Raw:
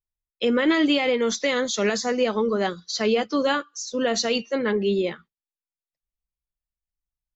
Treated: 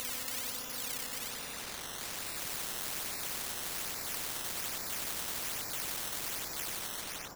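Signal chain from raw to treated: whole clip reversed; Paulstretch 33×, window 0.05 s, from 3.39; decimation with a swept rate 13×, swing 100% 1.2 Hz; on a send: echo 94 ms -5 dB; on the sum: spectral compressor 10:1; gain -6.5 dB

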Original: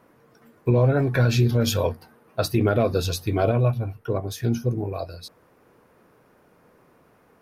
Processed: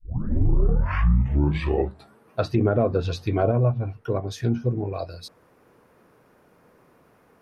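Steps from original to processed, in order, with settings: tape start at the beginning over 2.30 s; treble ducked by the level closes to 1200 Hz, closed at -16.5 dBFS

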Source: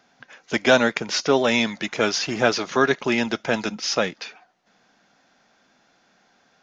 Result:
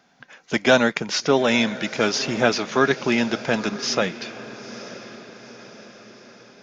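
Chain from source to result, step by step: bell 170 Hz +4.5 dB 0.73 oct; diffused feedback echo 0.924 s, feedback 52%, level -15 dB

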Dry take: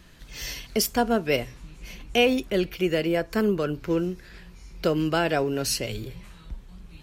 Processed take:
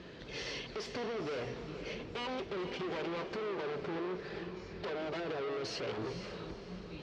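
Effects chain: 2.06–5.2 minimum comb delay 5.1 ms; bell 440 Hz +13 dB 1.1 oct; limiter -19.5 dBFS, peak gain reduction 16 dB; hard clip -35 dBFS, distortion -4 dB; LPF 4900 Hz 24 dB/oct; compressor, threshold -38 dBFS, peak gain reduction 3 dB; HPF 92 Hz 12 dB/oct; diffused feedback echo 0.476 s, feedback 41%, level -9 dB; gain +1 dB

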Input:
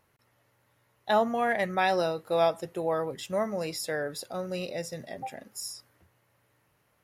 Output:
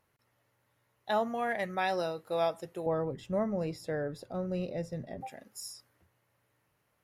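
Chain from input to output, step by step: 2.86–5.21 tilt -3.5 dB/oct; gain -5.5 dB

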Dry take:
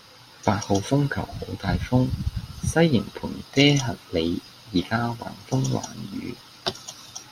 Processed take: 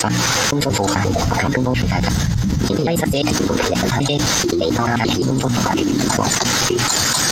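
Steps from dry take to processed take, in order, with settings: slices in reverse order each 87 ms, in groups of 6; high shelf 10000 Hz -9 dB; notches 60/120/180/240/300 Hz; formant shift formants +4 st; fast leveller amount 100%; gain -3 dB

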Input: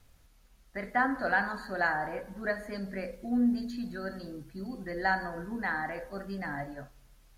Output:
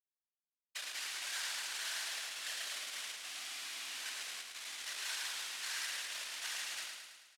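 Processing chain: per-bin compression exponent 0.4; expander -30 dBFS; comb 3.2 ms, depth 72%; compressor 1.5:1, threshold -39 dBFS, peak gain reduction 8 dB; Schmitt trigger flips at -32 dBFS; whisperiser; Butterworth band-pass 5400 Hz, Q 0.65; on a send: feedback echo 0.108 s, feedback 58%, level -4 dB

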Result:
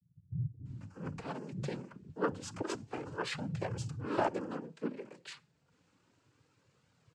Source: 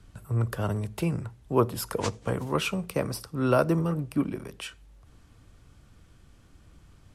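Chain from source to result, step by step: noise vocoder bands 8; bands offset in time lows, highs 0.65 s, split 190 Hz; flange 0.29 Hz, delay 1.3 ms, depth 4.2 ms, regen -39%; gain -4.5 dB

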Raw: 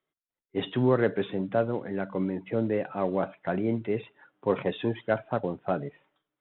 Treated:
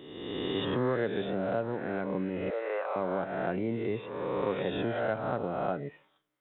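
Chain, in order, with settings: spectral swells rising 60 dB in 1.35 s; 2.5–2.96 inverse Chebyshev high-pass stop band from 230 Hz, stop band 40 dB; compressor 2:1, threshold -32 dBFS, peak gain reduction 9 dB

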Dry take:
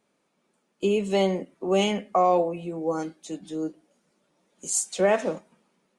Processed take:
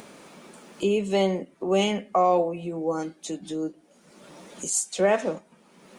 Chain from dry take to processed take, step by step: upward compressor, threshold -27 dBFS

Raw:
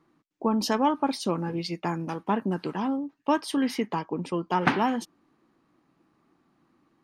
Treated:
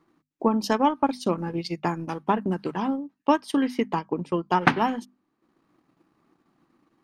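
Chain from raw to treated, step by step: transient shaper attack +4 dB, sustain -9 dB; notches 50/100/150/200/250 Hz; gain +1 dB

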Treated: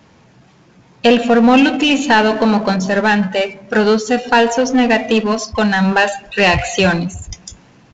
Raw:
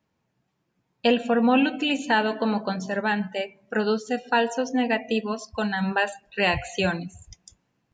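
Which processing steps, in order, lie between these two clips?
power-law curve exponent 0.7; downsampling 16000 Hz; gain +7.5 dB

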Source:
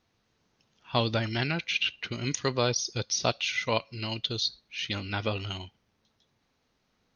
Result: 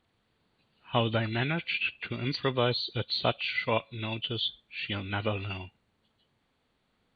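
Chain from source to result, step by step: nonlinear frequency compression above 2300 Hz 1.5:1

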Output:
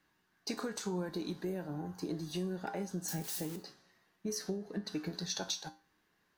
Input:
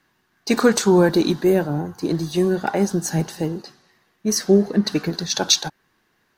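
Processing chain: 3.08–3.56 switching spikes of -18 dBFS; compressor 6:1, threshold -26 dBFS, peak gain reduction 16 dB; resonator 61 Hz, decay 0.33 s, harmonics odd, mix 70%; gain -2 dB

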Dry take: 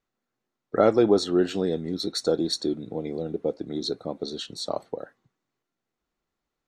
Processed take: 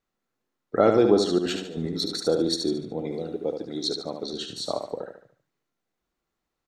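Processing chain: 1.38–2.2 negative-ratio compressor -31 dBFS, ratio -0.5; 3.11–4.26 tilt +1.5 dB/oct; feedback echo 73 ms, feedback 40%, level -6 dB

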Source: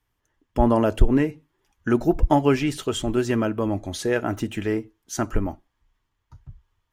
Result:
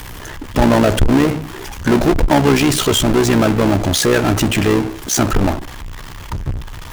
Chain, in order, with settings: AM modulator 64 Hz, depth 95%; power-law curve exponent 0.35; gain +2 dB

